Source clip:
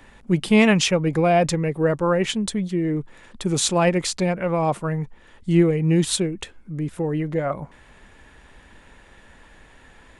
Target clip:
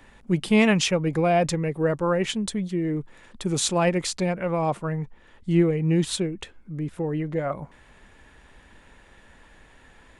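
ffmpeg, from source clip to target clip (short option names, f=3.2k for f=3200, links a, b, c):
-filter_complex "[0:a]asettb=1/sr,asplit=3[a][b][c];[a]atrim=end=4.724[d];[b]atrim=start=4.72:end=7.37,asetpts=PTS-STARTPTS,afade=t=in:d=0.004:c=qsin,afade=t=out:st=2.646:d=0.004:c=qsin,highshelf=f=6.8k:g=-6.5[e];[c]atrim=start=7.366[f];[d][e]acrossfade=d=0.004:c1=hsin:c2=qsin[g];[g][f]acrossfade=d=0.004:c1=qsin:c2=hsin,volume=-3dB"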